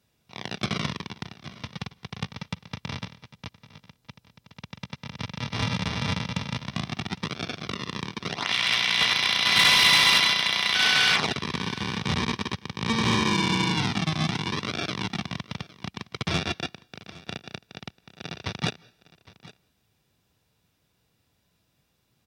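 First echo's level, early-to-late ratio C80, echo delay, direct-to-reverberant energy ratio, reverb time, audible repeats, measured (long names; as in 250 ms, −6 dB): −20.0 dB, no reverb audible, 810 ms, no reverb audible, no reverb audible, 1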